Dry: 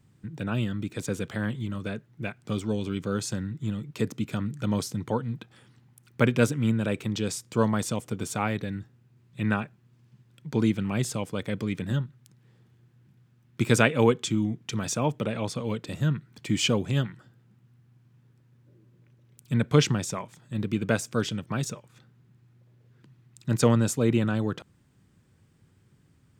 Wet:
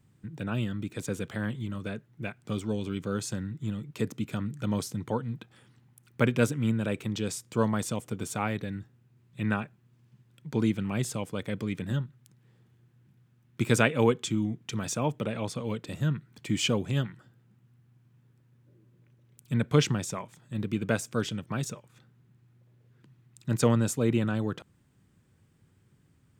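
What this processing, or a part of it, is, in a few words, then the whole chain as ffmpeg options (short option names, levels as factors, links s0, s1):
exciter from parts: -filter_complex "[0:a]asplit=2[s0][s1];[s1]highpass=f=4500:w=0.5412,highpass=f=4500:w=1.3066,asoftclip=type=tanh:threshold=0.0596,volume=0.237[s2];[s0][s2]amix=inputs=2:normalize=0,volume=0.75"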